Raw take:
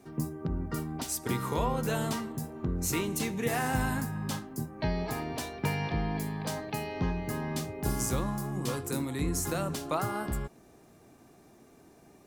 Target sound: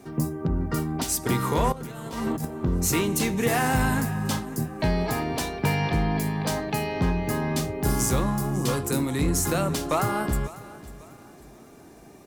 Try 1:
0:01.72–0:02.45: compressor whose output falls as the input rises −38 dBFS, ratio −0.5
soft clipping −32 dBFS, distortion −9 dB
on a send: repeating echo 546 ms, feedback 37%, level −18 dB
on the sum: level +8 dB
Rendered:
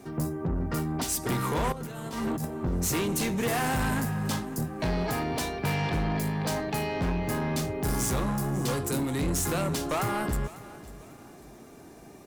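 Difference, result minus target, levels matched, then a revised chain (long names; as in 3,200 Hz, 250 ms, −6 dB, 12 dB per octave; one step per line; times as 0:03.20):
soft clipping: distortion +11 dB
0:01.72–0:02.45: compressor whose output falls as the input rises −38 dBFS, ratio −0.5
soft clipping −22 dBFS, distortion −20 dB
on a send: repeating echo 546 ms, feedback 37%, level −18 dB
on the sum: level +8 dB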